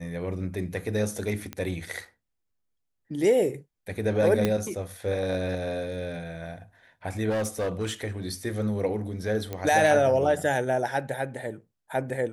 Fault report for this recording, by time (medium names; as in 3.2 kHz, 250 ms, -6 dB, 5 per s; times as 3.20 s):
1.53 s: pop -18 dBFS
4.45 s: pop -10 dBFS
7.29–7.93 s: clipped -24 dBFS
9.53 s: pop -18 dBFS